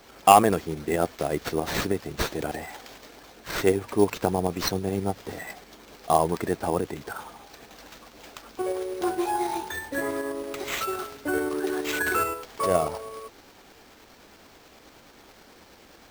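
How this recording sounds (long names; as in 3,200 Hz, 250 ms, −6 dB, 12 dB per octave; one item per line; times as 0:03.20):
tremolo saw up 9.4 Hz, depth 35%
aliases and images of a low sample rate 10,000 Hz, jitter 0%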